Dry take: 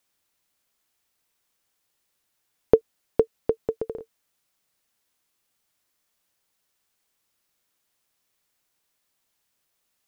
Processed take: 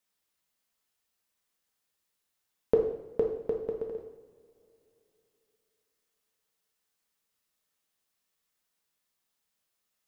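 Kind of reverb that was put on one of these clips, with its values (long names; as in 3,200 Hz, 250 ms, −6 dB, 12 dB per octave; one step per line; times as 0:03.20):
coupled-rooms reverb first 0.72 s, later 3.4 s, from −21 dB, DRR 0 dB
level −9 dB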